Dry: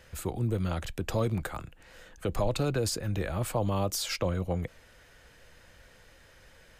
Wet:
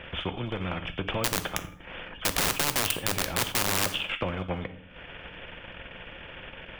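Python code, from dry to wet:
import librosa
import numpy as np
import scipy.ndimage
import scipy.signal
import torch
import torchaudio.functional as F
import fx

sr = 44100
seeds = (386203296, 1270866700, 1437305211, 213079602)

y = fx.freq_compress(x, sr, knee_hz=2200.0, ratio=4.0)
y = fx.high_shelf(y, sr, hz=2300.0, db=-5.0)
y = fx.transient(y, sr, attack_db=4, sustain_db=-12)
y = fx.overflow_wrap(y, sr, gain_db=23.0, at=(1.24, 3.86))
y = fx.rev_fdn(y, sr, rt60_s=0.42, lf_ratio=1.3, hf_ratio=0.95, size_ms=33.0, drr_db=10.5)
y = fx.spectral_comp(y, sr, ratio=2.0)
y = F.gain(torch.from_numpy(y), 7.0).numpy()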